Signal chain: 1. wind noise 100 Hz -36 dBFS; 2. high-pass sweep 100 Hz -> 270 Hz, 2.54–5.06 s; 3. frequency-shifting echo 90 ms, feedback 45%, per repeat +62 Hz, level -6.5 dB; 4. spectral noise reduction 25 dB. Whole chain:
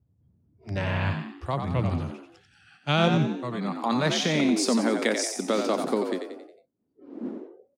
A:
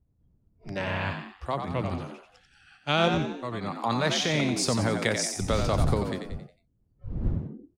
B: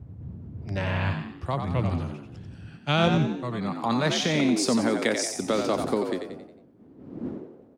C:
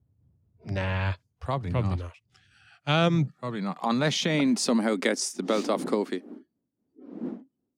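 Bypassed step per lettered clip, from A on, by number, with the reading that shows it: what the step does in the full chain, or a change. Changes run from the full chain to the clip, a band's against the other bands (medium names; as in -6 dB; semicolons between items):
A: 2, 250 Hz band -4.0 dB; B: 4, momentary loudness spread change +3 LU; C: 3, loudness change -1.0 LU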